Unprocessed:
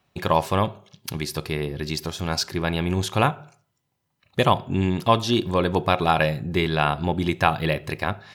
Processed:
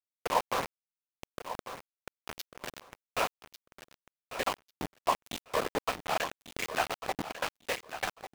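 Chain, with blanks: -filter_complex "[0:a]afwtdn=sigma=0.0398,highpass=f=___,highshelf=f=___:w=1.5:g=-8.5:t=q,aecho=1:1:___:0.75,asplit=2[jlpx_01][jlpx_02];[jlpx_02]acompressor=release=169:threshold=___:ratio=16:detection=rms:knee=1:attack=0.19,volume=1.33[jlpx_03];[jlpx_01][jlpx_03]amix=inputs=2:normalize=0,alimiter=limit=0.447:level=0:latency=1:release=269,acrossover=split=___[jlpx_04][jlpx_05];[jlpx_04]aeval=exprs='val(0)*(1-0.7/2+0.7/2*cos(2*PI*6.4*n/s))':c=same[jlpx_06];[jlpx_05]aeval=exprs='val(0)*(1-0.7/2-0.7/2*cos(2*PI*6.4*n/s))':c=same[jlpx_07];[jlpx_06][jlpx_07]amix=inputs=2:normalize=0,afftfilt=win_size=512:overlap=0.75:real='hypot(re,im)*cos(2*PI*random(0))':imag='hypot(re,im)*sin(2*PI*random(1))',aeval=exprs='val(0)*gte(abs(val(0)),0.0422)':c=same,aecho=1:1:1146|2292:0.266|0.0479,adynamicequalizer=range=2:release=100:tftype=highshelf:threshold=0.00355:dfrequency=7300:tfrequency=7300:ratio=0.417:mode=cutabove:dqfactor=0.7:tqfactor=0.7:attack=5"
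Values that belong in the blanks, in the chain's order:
430, 3.9k, 4, 0.0447, 510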